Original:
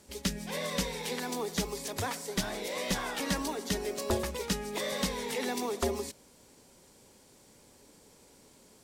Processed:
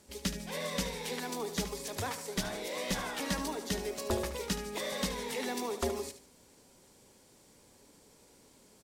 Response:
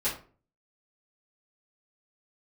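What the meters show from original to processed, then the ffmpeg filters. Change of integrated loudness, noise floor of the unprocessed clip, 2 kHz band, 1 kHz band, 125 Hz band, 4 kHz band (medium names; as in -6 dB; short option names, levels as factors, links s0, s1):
-2.0 dB, -60 dBFS, -2.0 dB, -2.0 dB, -2.0 dB, -2.0 dB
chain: -af "aecho=1:1:74|148|222:0.266|0.0878|0.029,volume=0.75"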